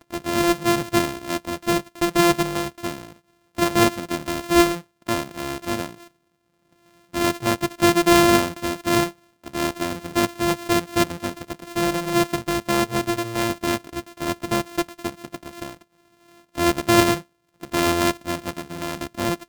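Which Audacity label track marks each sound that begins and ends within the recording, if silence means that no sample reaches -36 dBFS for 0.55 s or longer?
7.130000	15.750000	sound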